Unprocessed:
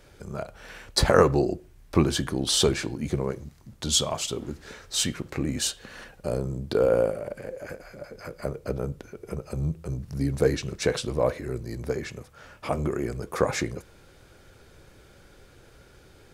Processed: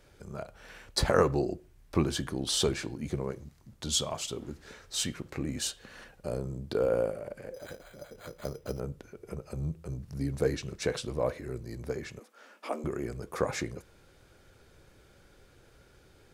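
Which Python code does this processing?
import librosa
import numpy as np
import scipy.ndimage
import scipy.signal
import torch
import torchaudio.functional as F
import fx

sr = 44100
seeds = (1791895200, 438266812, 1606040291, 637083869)

y = fx.resample_bad(x, sr, factor=8, down='none', up='hold', at=(7.54, 8.8))
y = fx.steep_highpass(y, sr, hz=210.0, slope=96, at=(12.19, 12.84))
y = y * 10.0 ** (-6.0 / 20.0)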